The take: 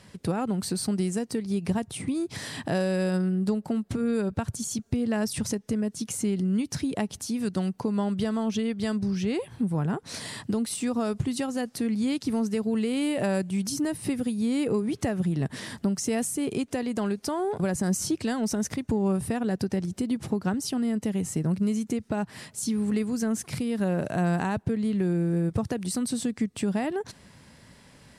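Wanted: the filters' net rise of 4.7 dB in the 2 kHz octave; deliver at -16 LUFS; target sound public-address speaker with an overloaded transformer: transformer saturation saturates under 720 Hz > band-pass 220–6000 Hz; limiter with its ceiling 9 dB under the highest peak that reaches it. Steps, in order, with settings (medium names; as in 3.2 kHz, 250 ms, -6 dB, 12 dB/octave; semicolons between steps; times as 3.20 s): peaking EQ 2 kHz +6 dB; peak limiter -22 dBFS; transformer saturation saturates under 720 Hz; band-pass 220–6000 Hz; trim +20 dB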